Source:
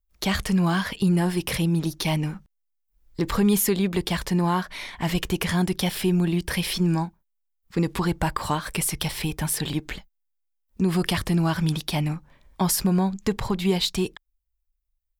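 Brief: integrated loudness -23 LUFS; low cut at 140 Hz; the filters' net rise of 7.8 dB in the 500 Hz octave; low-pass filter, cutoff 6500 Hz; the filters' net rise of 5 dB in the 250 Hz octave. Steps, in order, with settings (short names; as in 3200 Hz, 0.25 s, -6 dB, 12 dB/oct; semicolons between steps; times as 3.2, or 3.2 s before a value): HPF 140 Hz; LPF 6500 Hz; bell 250 Hz +8 dB; bell 500 Hz +7.5 dB; gain -2 dB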